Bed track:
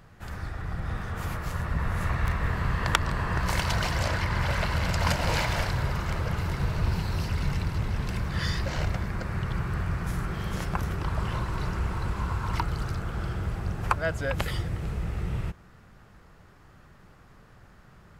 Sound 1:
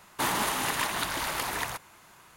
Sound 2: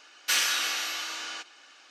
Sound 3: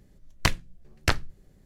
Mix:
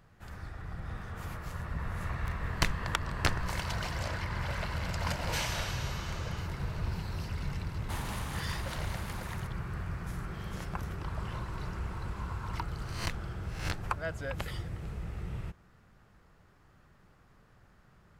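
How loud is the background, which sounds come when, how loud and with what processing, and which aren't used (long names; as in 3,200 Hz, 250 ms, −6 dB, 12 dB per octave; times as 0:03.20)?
bed track −8 dB
0:02.17: mix in 3 −5.5 dB
0:05.04: mix in 2 −13 dB
0:07.70: mix in 1 −13.5 dB + highs frequency-modulated by the lows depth 0.13 ms
0:12.62: mix in 3 −15.5 dB + peak hold with a rise ahead of every peak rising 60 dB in 0.55 s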